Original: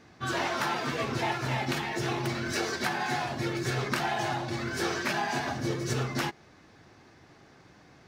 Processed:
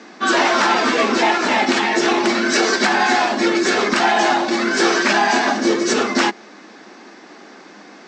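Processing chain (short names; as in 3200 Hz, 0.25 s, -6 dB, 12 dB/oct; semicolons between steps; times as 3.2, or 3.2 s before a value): Chebyshev band-pass 200–7900 Hz, order 5; soft clip -15.5 dBFS, distortion -30 dB; maximiser +21 dB; gain -5 dB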